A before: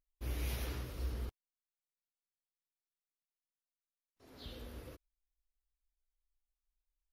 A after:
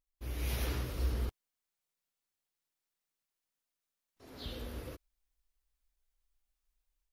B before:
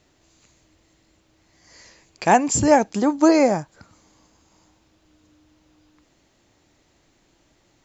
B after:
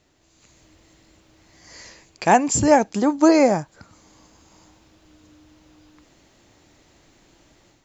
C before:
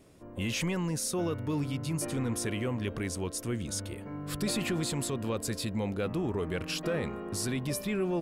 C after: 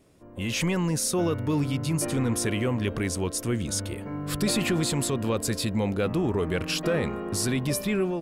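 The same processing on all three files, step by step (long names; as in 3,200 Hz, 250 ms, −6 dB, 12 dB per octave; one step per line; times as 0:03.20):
automatic gain control gain up to 8 dB
level −2 dB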